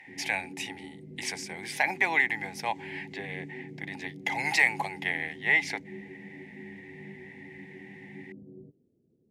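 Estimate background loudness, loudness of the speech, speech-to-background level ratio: -46.0 LUFS, -29.0 LUFS, 17.0 dB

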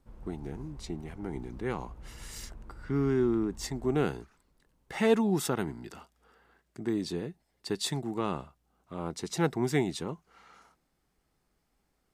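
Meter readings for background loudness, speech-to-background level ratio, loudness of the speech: -51.0 LUFS, 19.0 dB, -32.0 LUFS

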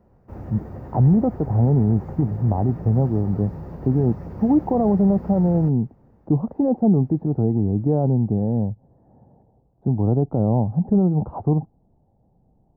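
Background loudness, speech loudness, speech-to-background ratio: -35.5 LUFS, -21.0 LUFS, 14.5 dB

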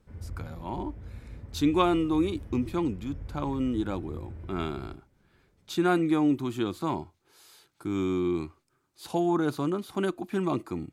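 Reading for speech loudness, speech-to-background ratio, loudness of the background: -29.0 LUFS, 14.5 dB, -43.5 LUFS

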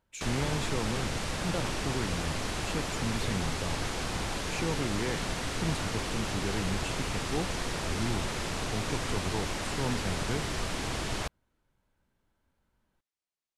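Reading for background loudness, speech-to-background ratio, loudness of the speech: -33.5 LUFS, -3.5 dB, -37.0 LUFS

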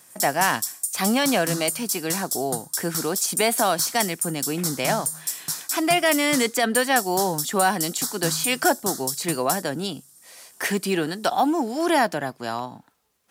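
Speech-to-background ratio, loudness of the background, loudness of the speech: 3.5 dB, -27.5 LUFS, -24.0 LUFS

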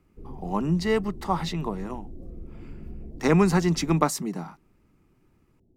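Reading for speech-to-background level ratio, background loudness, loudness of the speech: 18.5 dB, -43.5 LUFS, -25.0 LUFS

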